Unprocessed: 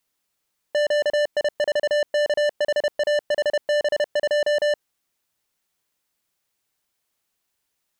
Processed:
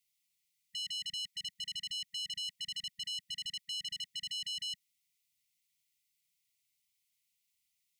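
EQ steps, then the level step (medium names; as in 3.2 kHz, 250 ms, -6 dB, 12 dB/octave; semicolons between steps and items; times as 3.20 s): brick-wall FIR band-stop 200–1900 Hz; bass shelf 110 Hz -10.5 dB; -4.0 dB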